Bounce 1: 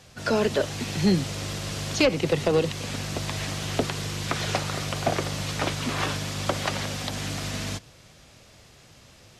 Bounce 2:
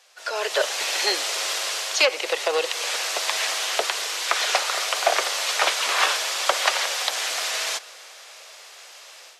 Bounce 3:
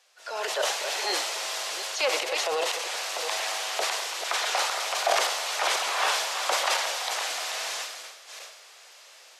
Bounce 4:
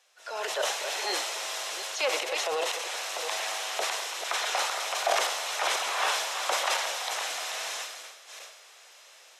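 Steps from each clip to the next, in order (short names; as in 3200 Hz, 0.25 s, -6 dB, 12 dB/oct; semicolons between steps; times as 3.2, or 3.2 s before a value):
Bessel high-pass 800 Hz, order 8; AGC gain up to 13 dB; reverb RT60 4.4 s, pre-delay 0.111 s, DRR 19.5 dB; gain -2 dB
reverse delay 0.365 s, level -8 dB; dynamic EQ 820 Hz, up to +6 dB, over -38 dBFS, Q 1.6; transient shaper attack -4 dB, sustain +9 dB; gain -7 dB
notch 4600 Hz, Q 12; gain -2 dB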